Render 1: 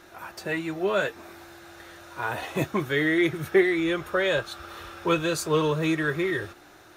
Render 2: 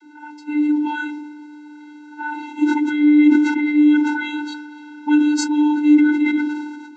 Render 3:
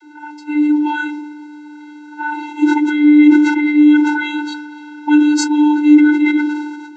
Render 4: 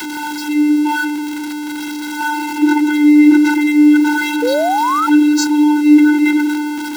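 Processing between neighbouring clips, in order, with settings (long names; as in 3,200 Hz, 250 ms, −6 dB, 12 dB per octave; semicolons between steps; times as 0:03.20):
channel vocoder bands 32, square 298 Hz; level that may fall only so fast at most 41 dB per second; level +8.5 dB
elliptic high-pass filter 300 Hz; level +5.5 dB
converter with a step at zero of −18.5 dBFS; sound drawn into the spectrogram rise, 0:04.42–0:05.07, 460–1,400 Hz −14 dBFS; level −1 dB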